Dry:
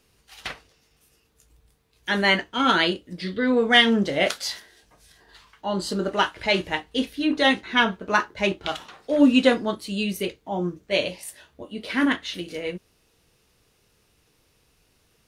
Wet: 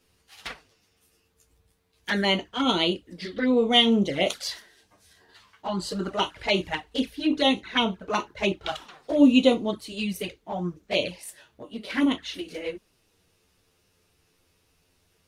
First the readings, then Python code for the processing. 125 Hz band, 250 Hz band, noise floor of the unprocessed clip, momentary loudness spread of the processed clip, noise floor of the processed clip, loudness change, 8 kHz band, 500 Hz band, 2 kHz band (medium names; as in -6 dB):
-1.5 dB, -0.5 dB, -65 dBFS, 20 LU, -68 dBFS, -2.0 dB, -2.5 dB, -2.0 dB, -7.5 dB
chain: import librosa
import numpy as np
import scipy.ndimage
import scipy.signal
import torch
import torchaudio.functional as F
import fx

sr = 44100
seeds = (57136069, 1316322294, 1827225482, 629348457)

y = fx.env_flanger(x, sr, rest_ms=11.7, full_db=-18.5)